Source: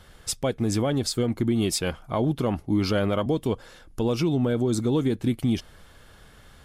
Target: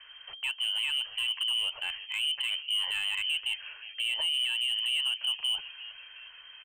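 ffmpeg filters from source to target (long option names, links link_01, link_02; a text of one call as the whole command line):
ffmpeg -i in.wav -filter_complex "[0:a]lowpass=frequency=2700:width_type=q:width=0.5098,lowpass=frequency=2700:width_type=q:width=0.6013,lowpass=frequency=2700:width_type=q:width=0.9,lowpass=frequency=2700:width_type=q:width=2.563,afreqshift=-3200,asplit=4[link_01][link_02][link_03][link_04];[link_02]adelay=359,afreqshift=-130,volume=-23dB[link_05];[link_03]adelay=718,afreqshift=-260,volume=-29.9dB[link_06];[link_04]adelay=1077,afreqshift=-390,volume=-36.9dB[link_07];[link_01][link_05][link_06][link_07]amix=inputs=4:normalize=0,acrossover=split=120|490|1800[link_08][link_09][link_10][link_11];[link_09]acrusher=bits=3:mix=0:aa=0.5[link_12];[link_11]asoftclip=type=hard:threshold=-21.5dB[link_13];[link_08][link_12][link_10][link_13]amix=inputs=4:normalize=0,alimiter=level_in=0.5dB:limit=-24dB:level=0:latency=1:release=60,volume=-0.5dB" out.wav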